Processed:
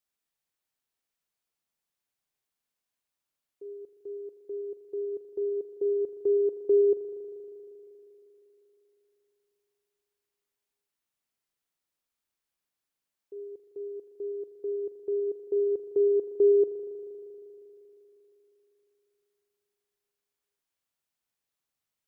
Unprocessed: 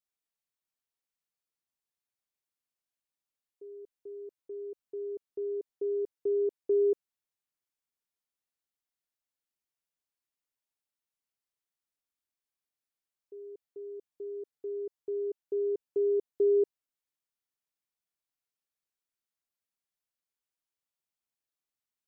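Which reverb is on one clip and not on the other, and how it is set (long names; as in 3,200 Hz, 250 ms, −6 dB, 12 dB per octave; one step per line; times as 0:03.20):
spring reverb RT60 3.5 s, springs 39 ms, chirp 35 ms, DRR 5 dB
level +4 dB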